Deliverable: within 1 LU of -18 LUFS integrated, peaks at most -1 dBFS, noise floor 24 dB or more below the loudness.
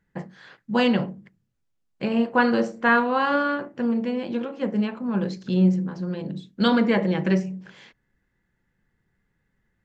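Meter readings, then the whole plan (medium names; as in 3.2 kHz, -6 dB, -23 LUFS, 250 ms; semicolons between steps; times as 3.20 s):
loudness -23.5 LUFS; peak level -8.0 dBFS; loudness target -18.0 LUFS
-> trim +5.5 dB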